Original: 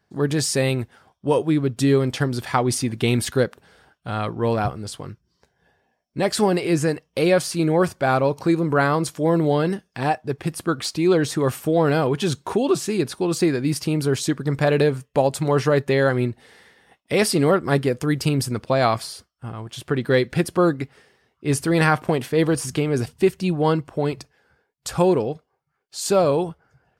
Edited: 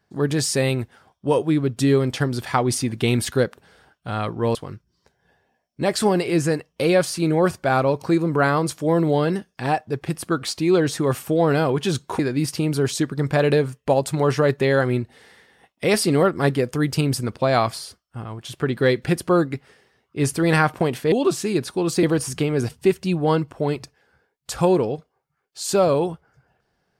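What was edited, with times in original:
4.55–4.92 s: delete
12.56–13.47 s: move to 22.40 s

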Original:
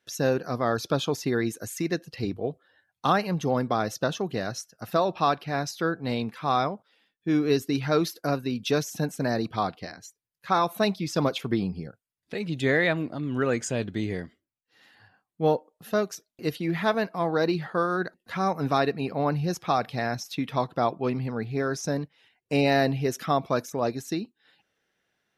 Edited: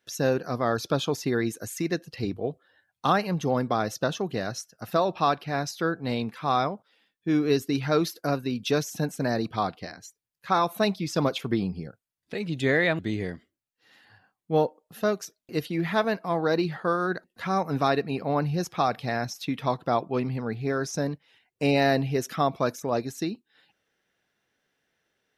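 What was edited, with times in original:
12.99–13.89 s: delete

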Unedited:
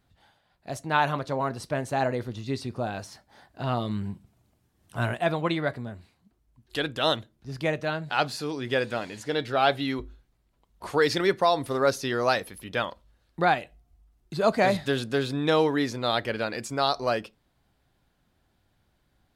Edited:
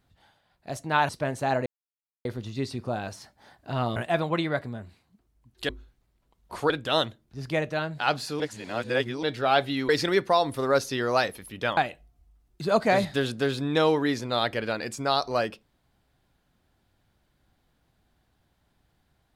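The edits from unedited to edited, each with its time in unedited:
1.09–1.59 s: delete
2.16 s: insert silence 0.59 s
3.87–5.08 s: delete
8.51–9.34 s: reverse
10.00–11.01 s: move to 6.81 s
12.89–13.49 s: delete

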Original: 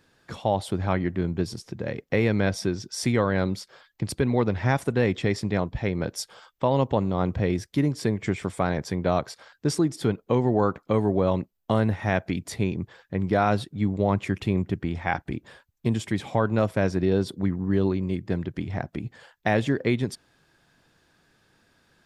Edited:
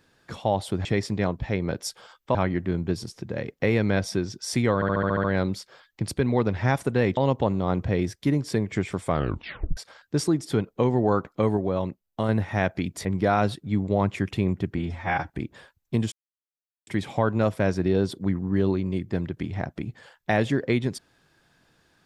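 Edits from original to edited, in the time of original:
3.25 s: stutter 0.07 s, 8 plays
5.18–6.68 s: move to 0.85 s
8.58 s: tape stop 0.70 s
11.08–11.80 s: gain -3.5 dB
12.56–13.14 s: delete
14.87–15.21 s: stretch 1.5×
16.04 s: insert silence 0.75 s

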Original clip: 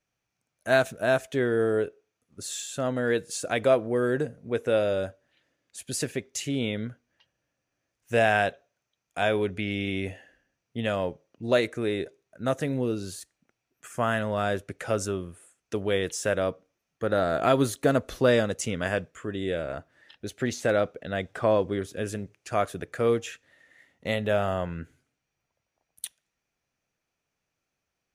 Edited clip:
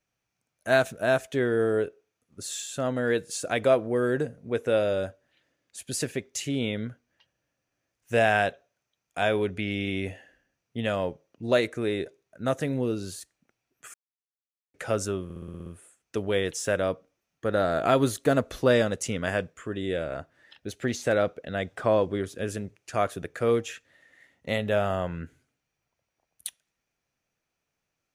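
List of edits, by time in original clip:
13.94–14.74 s: mute
15.24 s: stutter 0.06 s, 8 plays

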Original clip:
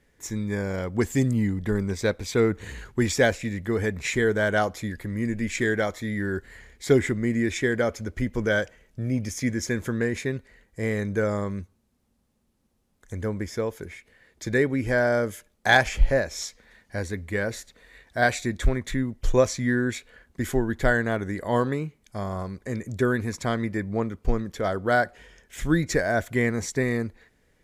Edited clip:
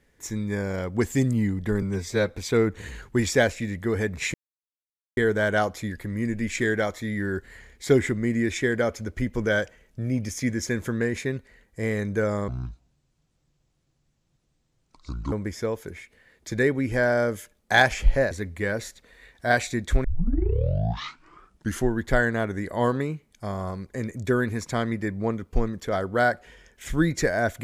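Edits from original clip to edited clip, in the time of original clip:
1.82–2.16 s: stretch 1.5×
4.17 s: insert silence 0.83 s
11.48–13.27 s: speed 63%
16.26–17.03 s: delete
18.76 s: tape start 1.86 s

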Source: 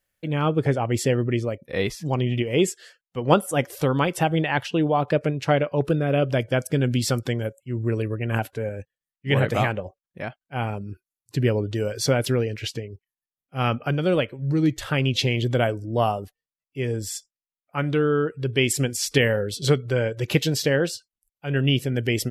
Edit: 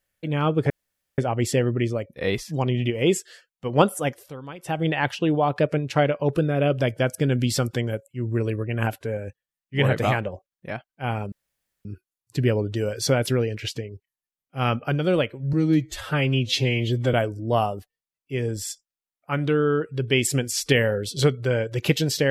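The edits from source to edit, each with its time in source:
0.70 s: insert room tone 0.48 s
3.48–4.42 s: dip -16 dB, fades 0.32 s
10.84 s: insert room tone 0.53 s
14.52–15.59 s: stretch 1.5×

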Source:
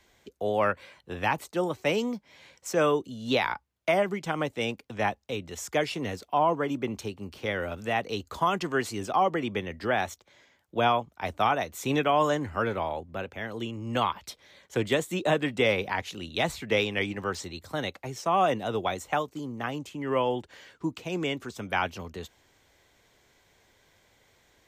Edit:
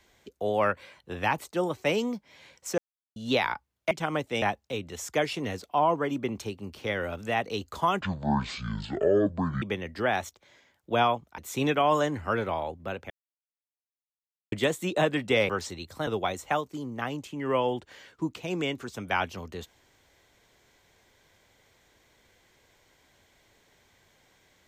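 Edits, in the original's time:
2.78–3.16 s: mute
3.91–4.17 s: delete
4.68–5.01 s: delete
8.60–9.47 s: speed 54%
11.23–11.67 s: delete
13.39–14.81 s: mute
15.78–17.23 s: delete
17.81–18.69 s: delete

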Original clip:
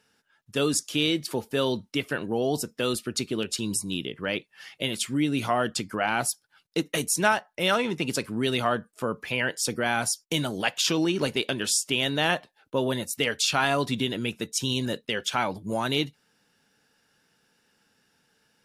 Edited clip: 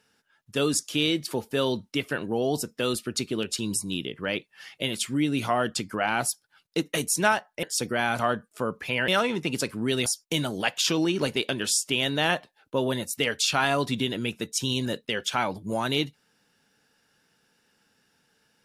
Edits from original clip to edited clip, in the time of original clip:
7.63–8.61 s: swap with 9.50–10.06 s

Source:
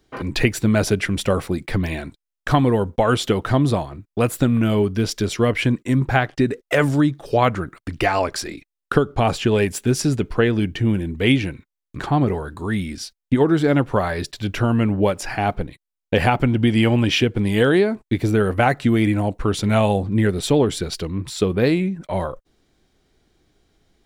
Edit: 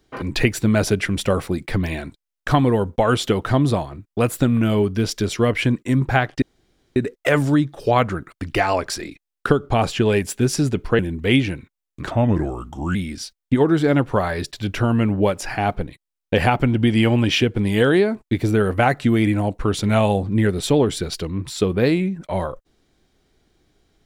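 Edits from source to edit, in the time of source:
6.42 s: insert room tone 0.54 s
10.45–10.95 s: delete
12.07–12.75 s: speed 81%

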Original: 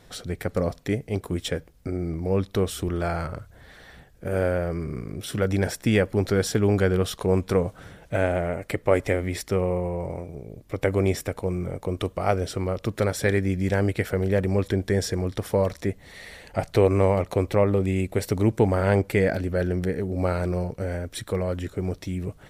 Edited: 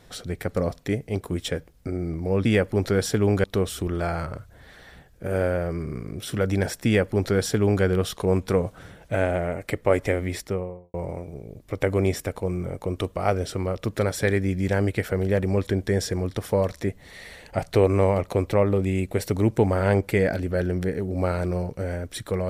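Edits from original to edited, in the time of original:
5.86–6.85 s: copy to 2.45 s
9.31–9.95 s: studio fade out

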